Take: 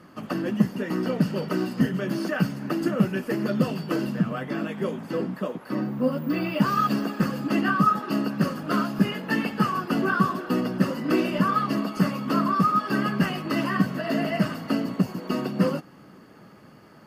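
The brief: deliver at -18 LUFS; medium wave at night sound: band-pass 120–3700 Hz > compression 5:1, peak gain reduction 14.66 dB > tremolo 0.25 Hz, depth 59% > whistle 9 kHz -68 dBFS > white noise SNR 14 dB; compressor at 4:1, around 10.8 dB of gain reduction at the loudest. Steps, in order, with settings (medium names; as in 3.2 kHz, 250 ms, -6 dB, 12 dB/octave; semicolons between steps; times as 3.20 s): compression 4:1, threshold -28 dBFS; band-pass 120–3700 Hz; compression 5:1, threshold -40 dBFS; tremolo 0.25 Hz, depth 59%; whistle 9 kHz -68 dBFS; white noise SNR 14 dB; trim +27 dB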